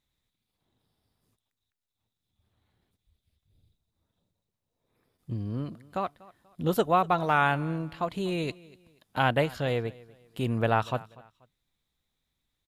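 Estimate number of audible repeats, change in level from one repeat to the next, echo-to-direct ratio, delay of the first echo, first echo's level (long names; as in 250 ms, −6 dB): 2, −9.5 dB, −21.5 dB, 242 ms, −22.0 dB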